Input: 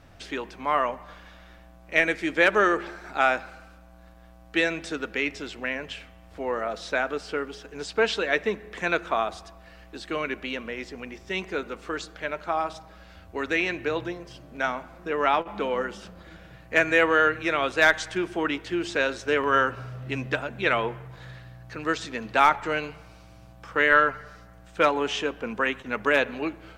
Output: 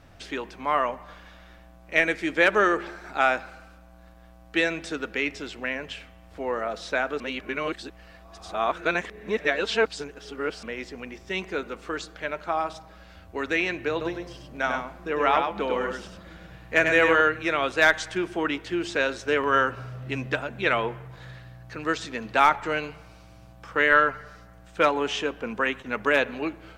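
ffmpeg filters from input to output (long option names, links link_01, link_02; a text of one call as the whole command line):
ffmpeg -i in.wav -filter_complex "[0:a]asettb=1/sr,asplit=3[link_01][link_02][link_03];[link_01]atrim=end=13.914[link_04];[link_02]atrim=start=13.91:end=17.21,asetpts=PTS-STARTPTS,afade=type=in:duration=0.004:curve=qsin,afade=type=out:start_time=3.296:duration=0.004:curve=qsin,aecho=1:1:99:0.596,atrim=end_sample=145530[link_05];[link_03]atrim=start=17.206[link_06];[link_04][link_05]acrossfade=duration=0.004:curve1=hsin:curve2=qsin[link_07];[link_07][link_06]acrossfade=duration=0.004:curve1=qsin:curve2=hsin,asplit=3[link_08][link_09][link_10];[link_08]atrim=end=7.202[link_11];[link_09]atrim=start=7.198:end=10.632,asetpts=PTS-STARTPTS,areverse[link_12];[link_10]atrim=start=10.628[link_13];[link_11][link_12]acrossfade=duration=0.004:curve1=hsin:curve2=hsin[link_14];[link_14][link_13]acrossfade=duration=0.004:curve1=hsin:curve2=hsin" out.wav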